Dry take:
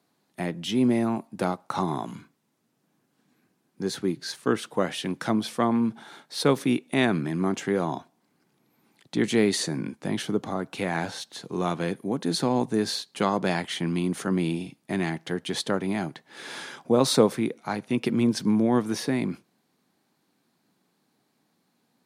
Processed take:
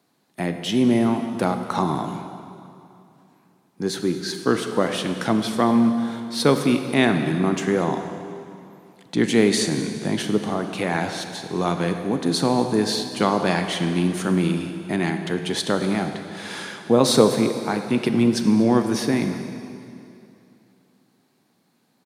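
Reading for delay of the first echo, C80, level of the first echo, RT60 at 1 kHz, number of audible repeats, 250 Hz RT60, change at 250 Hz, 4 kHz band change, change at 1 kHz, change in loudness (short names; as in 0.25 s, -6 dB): 0.237 s, 8.0 dB, -19.5 dB, 2.7 s, 1, 2.8 s, +5.0 dB, +5.0 dB, +5.0 dB, +4.5 dB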